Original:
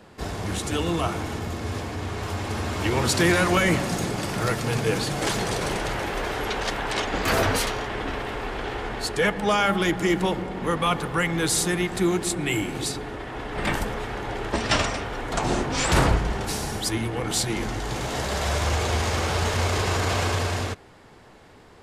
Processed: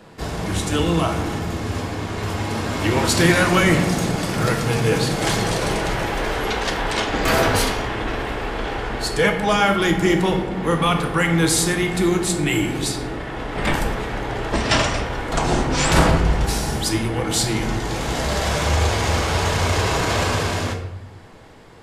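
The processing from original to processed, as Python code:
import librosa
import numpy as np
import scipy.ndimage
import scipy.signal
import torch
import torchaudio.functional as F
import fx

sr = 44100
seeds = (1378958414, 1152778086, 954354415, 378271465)

y = fx.room_shoebox(x, sr, seeds[0], volume_m3=240.0, walls='mixed', distance_m=0.67)
y = F.gain(torch.from_numpy(y), 3.0).numpy()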